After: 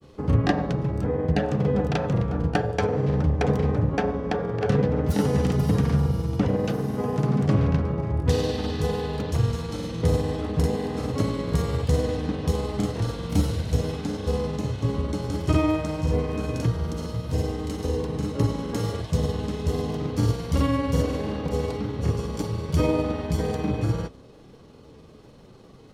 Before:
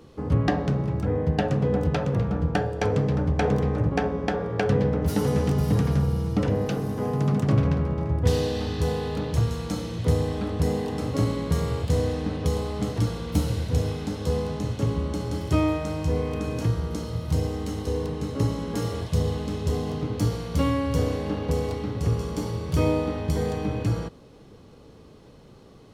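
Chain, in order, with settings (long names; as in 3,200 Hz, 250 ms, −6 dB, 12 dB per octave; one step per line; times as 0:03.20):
mains-hum notches 50/100 Hz
granular cloud, spray 35 ms, pitch spread up and down by 0 semitones
level +2 dB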